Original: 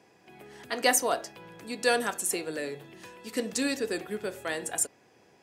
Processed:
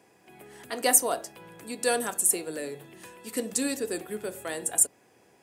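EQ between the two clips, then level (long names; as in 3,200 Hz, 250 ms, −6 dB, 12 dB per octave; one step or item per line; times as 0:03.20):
mains-hum notches 50/100/150/200 Hz
dynamic equaliser 1,900 Hz, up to −4 dB, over −43 dBFS, Q 0.84
high shelf with overshoot 7,100 Hz +6.5 dB, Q 1.5
0.0 dB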